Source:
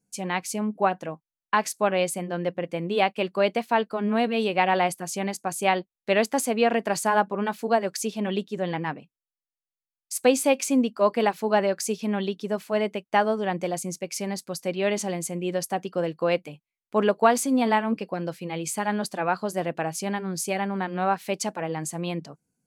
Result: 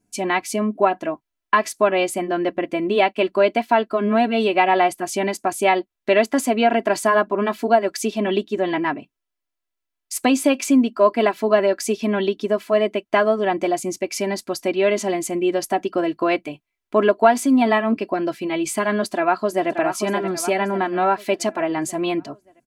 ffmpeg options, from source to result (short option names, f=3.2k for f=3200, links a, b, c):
-filter_complex "[0:a]asplit=2[a][b];[b]afade=t=in:st=19.09:d=0.01,afade=t=out:st=19.69:d=0.01,aecho=0:1:580|1160|1740|2320|2900:0.375837|0.169127|0.0761071|0.0342482|0.0154117[c];[a][c]amix=inputs=2:normalize=0,bass=f=250:g=2,treble=f=4k:g=-7,aecho=1:1:3:0.8,acompressor=threshold=-29dB:ratio=1.5,volume=8dB"